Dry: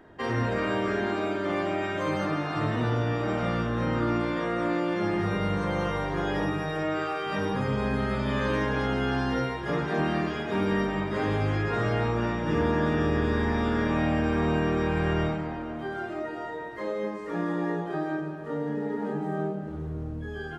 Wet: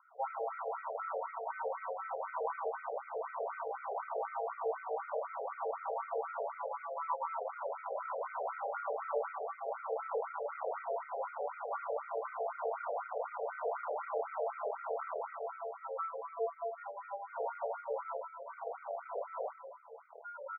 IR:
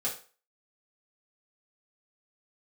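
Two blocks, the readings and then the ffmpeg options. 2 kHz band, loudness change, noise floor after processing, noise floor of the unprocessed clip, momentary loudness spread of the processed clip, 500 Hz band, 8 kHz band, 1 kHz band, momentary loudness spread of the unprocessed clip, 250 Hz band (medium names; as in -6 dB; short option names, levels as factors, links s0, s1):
-16.0 dB, -11.5 dB, -53 dBFS, -36 dBFS, 5 LU, -8.5 dB, no reading, -5.5 dB, 8 LU, under -40 dB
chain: -filter_complex "[0:a]equalizer=f=1300:w=0.41:g=-9.5,acrossover=split=350|1800[s0][s1][s2];[s1]alimiter=level_in=2.82:limit=0.0631:level=0:latency=1,volume=0.355[s3];[s2]acompressor=threshold=0.001:ratio=6[s4];[s0][s3][s4]amix=inputs=3:normalize=0,asoftclip=type=hard:threshold=0.0316,highpass=f=520:t=q:w=0.5412,highpass=f=520:t=q:w=1.307,lowpass=f=3600:t=q:w=0.5176,lowpass=f=3600:t=q:w=0.7071,lowpass=f=3600:t=q:w=1.932,afreqshift=-250,adynamicsmooth=sensitivity=5.5:basefreq=1200,asuperstop=centerf=1700:order=12:qfactor=5.1,asplit=2[s5][s6];[s6]adelay=31,volume=0.501[s7];[s5][s7]amix=inputs=2:normalize=0,afftfilt=real='re*between(b*sr/1024,550*pow(1800/550,0.5+0.5*sin(2*PI*4*pts/sr))/1.41,550*pow(1800/550,0.5+0.5*sin(2*PI*4*pts/sr))*1.41)':imag='im*between(b*sr/1024,550*pow(1800/550,0.5+0.5*sin(2*PI*4*pts/sr))/1.41,550*pow(1800/550,0.5+0.5*sin(2*PI*4*pts/sr))*1.41)':win_size=1024:overlap=0.75,volume=4.73"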